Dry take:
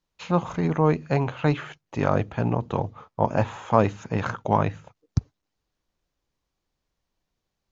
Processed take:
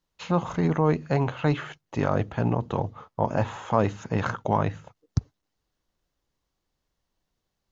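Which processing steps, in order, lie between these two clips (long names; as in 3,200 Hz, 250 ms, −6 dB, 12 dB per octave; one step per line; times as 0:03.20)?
notch filter 2,400 Hz, Q 16
in parallel at +3 dB: brickwall limiter −14 dBFS, peak gain reduction 11 dB
on the sum: level −7 dB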